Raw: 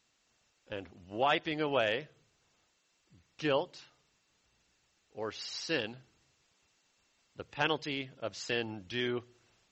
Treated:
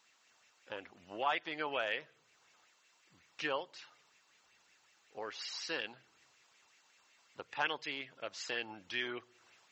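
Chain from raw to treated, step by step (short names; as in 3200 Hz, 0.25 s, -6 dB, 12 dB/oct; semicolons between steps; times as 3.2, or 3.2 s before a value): HPF 520 Hz 6 dB/oct; compressor 1.5:1, threshold -54 dBFS, peak gain reduction 10.5 dB; LFO bell 5.4 Hz 890–2400 Hz +9 dB; gain +3 dB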